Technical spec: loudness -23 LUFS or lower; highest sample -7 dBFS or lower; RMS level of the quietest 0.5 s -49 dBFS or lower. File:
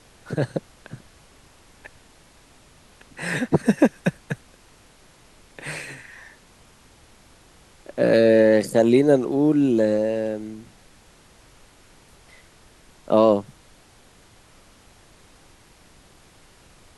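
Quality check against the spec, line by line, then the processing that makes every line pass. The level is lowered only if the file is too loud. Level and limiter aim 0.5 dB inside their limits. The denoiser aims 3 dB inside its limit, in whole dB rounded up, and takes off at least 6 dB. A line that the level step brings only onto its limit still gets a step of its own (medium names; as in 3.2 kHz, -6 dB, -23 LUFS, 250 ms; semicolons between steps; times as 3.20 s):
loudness -20.5 LUFS: fail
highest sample -5.0 dBFS: fail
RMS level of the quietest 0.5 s -53 dBFS: pass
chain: trim -3 dB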